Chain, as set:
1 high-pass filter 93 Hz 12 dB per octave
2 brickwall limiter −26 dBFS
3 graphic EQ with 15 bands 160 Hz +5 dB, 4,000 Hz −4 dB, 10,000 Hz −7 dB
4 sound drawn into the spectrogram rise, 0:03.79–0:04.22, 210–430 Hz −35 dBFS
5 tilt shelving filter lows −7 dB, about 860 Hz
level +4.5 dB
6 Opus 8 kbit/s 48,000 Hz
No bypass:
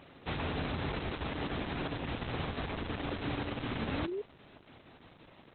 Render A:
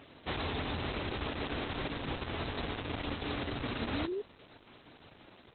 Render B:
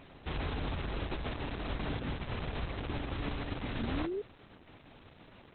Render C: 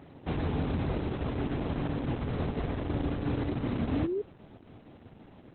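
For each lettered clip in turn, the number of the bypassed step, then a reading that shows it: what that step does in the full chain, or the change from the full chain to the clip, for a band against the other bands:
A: 3, 4 kHz band +2.5 dB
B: 1, 125 Hz band +2.5 dB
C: 5, 4 kHz band −10.0 dB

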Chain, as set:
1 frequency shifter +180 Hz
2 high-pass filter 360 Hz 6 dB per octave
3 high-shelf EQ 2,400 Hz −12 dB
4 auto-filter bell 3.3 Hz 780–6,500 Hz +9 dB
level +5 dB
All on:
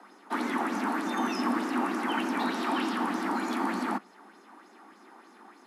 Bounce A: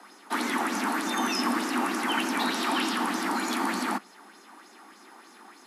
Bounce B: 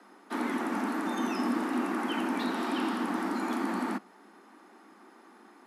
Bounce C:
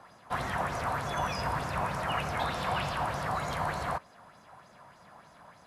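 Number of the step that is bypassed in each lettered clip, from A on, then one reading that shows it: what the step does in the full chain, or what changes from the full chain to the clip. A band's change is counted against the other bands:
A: 3, 8 kHz band +9.0 dB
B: 4, 250 Hz band +2.0 dB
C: 1, 250 Hz band −12.5 dB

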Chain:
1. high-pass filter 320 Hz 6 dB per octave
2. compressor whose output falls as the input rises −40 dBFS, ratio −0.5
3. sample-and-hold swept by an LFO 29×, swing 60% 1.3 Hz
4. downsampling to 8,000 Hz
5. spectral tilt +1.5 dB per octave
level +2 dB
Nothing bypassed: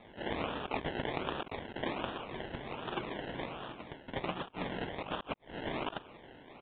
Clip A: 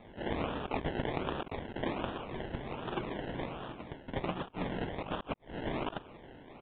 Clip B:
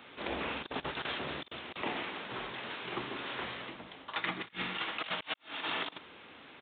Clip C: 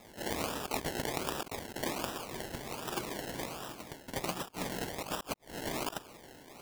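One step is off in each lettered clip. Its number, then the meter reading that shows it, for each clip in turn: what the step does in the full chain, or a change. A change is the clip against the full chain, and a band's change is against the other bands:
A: 5, 125 Hz band +4.0 dB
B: 3, change in crest factor −2.5 dB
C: 4, 4 kHz band +2.5 dB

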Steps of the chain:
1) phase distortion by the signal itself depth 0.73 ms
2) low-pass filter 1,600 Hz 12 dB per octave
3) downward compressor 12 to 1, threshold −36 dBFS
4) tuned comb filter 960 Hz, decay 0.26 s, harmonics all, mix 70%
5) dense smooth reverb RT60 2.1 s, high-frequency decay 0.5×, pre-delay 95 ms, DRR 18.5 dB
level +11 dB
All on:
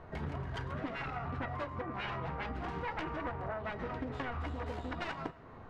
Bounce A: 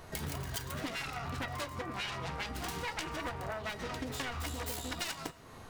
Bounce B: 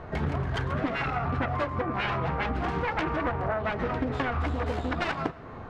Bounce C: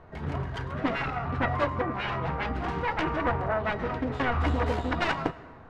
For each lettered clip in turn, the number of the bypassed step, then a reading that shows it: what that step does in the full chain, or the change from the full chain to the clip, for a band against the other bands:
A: 2, 4 kHz band +11.0 dB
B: 4, change in integrated loudness +10.0 LU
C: 3, average gain reduction 8.5 dB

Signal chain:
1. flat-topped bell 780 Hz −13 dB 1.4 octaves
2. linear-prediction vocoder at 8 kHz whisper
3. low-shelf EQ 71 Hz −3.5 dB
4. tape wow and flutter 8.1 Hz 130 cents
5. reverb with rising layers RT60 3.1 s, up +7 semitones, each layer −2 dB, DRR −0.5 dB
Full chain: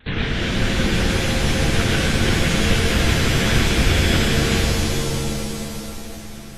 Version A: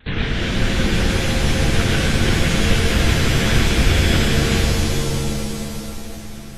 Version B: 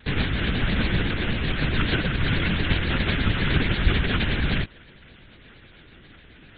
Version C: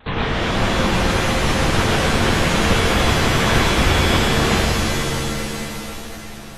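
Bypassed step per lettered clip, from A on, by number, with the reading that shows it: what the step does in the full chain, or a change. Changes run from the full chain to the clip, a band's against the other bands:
3, 125 Hz band +1.5 dB
5, change in momentary loudness spread −8 LU
1, 1 kHz band +7.0 dB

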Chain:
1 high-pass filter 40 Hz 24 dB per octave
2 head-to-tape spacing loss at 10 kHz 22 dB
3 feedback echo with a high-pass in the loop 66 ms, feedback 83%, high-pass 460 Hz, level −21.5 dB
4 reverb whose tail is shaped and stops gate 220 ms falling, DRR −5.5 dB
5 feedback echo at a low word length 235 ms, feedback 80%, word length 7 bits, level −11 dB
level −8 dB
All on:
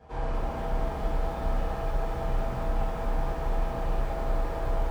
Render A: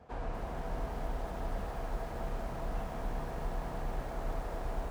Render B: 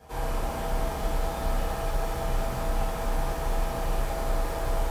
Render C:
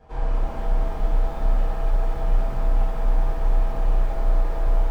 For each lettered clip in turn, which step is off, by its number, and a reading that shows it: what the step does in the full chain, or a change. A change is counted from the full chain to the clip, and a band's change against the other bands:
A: 4, 125 Hz band −2.0 dB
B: 2, 4 kHz band +6.5 dB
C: 1, 125 Hz band +5.5 dB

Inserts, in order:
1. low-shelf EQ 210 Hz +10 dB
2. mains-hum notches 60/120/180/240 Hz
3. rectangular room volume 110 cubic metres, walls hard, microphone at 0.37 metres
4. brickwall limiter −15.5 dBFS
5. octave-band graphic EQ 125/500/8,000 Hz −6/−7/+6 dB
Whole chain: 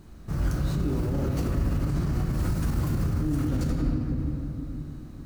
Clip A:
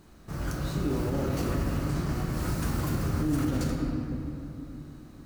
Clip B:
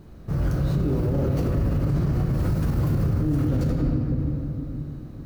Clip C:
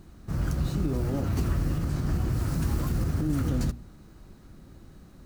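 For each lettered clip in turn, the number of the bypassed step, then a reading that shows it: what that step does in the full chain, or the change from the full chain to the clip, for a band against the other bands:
1, 125 Hz band −6.5 dB
5, 2 kHz band −3.5 dB
3, change in momentary loudness spread −4 LU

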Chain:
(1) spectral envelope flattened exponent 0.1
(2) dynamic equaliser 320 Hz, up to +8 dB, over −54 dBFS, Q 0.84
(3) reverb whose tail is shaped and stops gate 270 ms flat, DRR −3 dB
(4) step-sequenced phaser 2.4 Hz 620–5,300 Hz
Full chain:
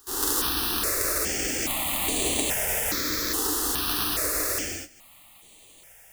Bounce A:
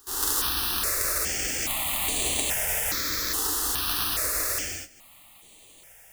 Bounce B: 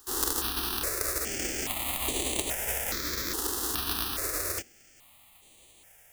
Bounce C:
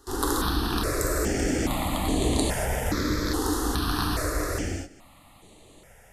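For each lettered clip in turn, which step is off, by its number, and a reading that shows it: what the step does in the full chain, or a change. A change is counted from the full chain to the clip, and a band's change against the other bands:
2, 250 Hz band −6.5 dB
3, change in crest factor +4.5 dB
1, 125 Hz band +11.0 dB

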